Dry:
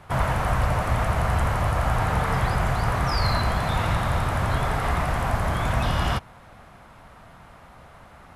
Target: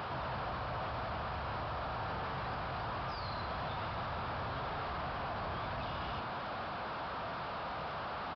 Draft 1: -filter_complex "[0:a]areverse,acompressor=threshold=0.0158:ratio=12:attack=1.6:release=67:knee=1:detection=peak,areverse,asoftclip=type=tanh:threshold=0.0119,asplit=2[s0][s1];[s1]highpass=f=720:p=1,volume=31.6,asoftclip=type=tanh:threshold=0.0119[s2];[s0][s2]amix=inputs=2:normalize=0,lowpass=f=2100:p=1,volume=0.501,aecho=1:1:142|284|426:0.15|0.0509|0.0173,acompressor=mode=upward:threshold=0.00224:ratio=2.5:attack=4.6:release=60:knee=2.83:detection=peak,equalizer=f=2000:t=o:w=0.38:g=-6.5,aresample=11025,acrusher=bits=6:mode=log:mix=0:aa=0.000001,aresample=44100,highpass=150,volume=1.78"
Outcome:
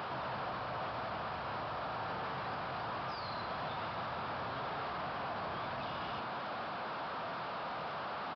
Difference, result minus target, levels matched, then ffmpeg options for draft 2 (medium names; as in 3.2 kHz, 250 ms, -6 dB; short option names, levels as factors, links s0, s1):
125 Hz band -5.0 dB
-filter_complex "[0:a]areverse,acompressor=threshold=0.0158:ratio=12:attack=1.6:release=67:knee=1:detection=peak,areverse,asoftclip=type=tanh:threshold=0.0119,asplit=2[s0][s1];[s1]highpass=f=720:p=1,volume=31.6,asoftclip=type=tanh:threshold=0.0119[s2];[s0][s2]amix=inputs=2:normalize=0,lowpass=f=2100:p=1,volume=0.501,aecho=1:1:142|284|426:0.15|0.0509|0.0173,acompressor=mode=upward:threshold=0.00224:ratio=2.5:attack=4.6:release=60:knee=2.83:detection=peak,equalizer=f=2000:t=o:w=0.38:g=-6.5,aresample=11025,acrusher=bits=6:mode=log:mix=0:aa=0.000001,aresample=44100,highpass=55,volume=1.78"